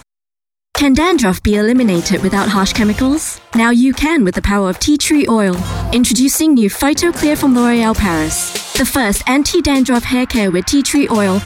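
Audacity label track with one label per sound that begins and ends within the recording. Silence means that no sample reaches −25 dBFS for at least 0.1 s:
0.750000	3.380000	sound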